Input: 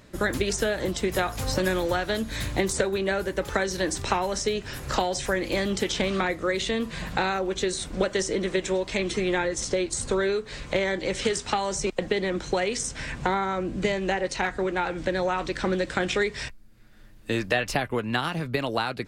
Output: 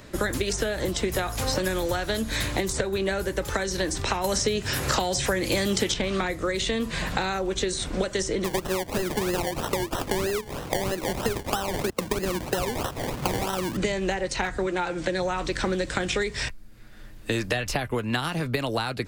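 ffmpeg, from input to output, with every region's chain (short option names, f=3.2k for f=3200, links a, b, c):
-filter_complex "[0:a]asettb=1/sr,asplit=3[a][b][c];[a]atrim=end=4.244[d];[b]atrim=start=4.24:end=5.94,asetpts=PTS-STARTPTS,afade=t=in:d=0.004:c=qsin,afade=t=out:st=1.696:d=0.004:c=qsin,highpass=67,acontrast=52,highshelf=f=6.1k:g=7[e];[c]atrim=start=5.936[f];[d][e]acrossfade=d=0.004:c1=hsin:c2=qsin[g];[g][f]acrossfade=d=0.004:c1=qsin:c2=hsin,asettb=1/sr,asplit=3[h][i][j];[h]atrim=end=8.444[k];[i]atrim=start=8.44:end=13.77,asetpts=PTS-STARTPTS,afade=t=in:d=0.004:c=qsin,afade=t=out:st=5.326:d=0.004:c=qsin,highpass=99,acrusher=samples=27:mix=1:aa=0.000001:lfo=1:lforange=16.2:lforate=3.1[l];[j]atrim=start=13.766[m];[k][l]acrossfade=d=0.004:c1=hsin:c2=qsin[n];[n][m]acrossfade=d=0.004:c1=qsin:c2=hsin,asettb=1/sr,asplit=3[o][p][q];[o]atrim=end=14.664[r];[p]atrim=start=14.66:end=15.22,asetpts=PTS-STARTPTS,afade=t=in:d=0.004:c=qsin,afade=t=out:st=0.556:d=0.004:c=qsin,lowpass=f=11k:w=0.5412,lowpass=f=11k:w=1.3066,lowshelf=f=150:g=-10.5,aecho=1:1:5.8:0.5,atrim=end_sample=24696[s];[q]atrim=start=15.216[t];[r][s]acrossfade=d=0.004:c1=hsin:c2=qsin[u];[u][t]acrossfade=d=0.004:c1=qsin:c2=hsin,equalizer=f=180:t=o:w=0.77:g=-3,acrossover=split=180|5200[v][w][x];[v]acompressor=threshold=-38dB:ratio=4[y];[w]acompressor=threshold=-33dB:ratio=4[z];[x]acompressor=threshold=-41dB:ratio=4[aa];[y][z][aa]amix=inputs=3:normalize=0,volume=7dB"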